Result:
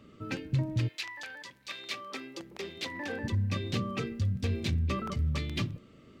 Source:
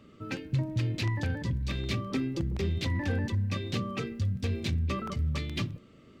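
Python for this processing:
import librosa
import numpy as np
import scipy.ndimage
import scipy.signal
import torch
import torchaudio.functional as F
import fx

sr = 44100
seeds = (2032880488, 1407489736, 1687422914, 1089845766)

y = fx.highpass(x, sr, hz=fx.line((0.87, 1400.0), (3.23, 330.0)), slope=12, at=(0.87, 3.23), fade=0.02)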